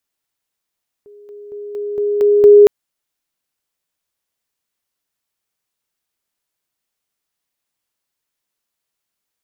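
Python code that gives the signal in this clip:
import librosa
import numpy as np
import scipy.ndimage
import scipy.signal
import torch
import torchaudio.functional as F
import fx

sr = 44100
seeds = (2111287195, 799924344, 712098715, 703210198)

y = fx.level_ladder(sr, hz=412.0, from_db=-38.5, step_db=6.0, steps=7, dwell_s=0.23, gap_s=0.0)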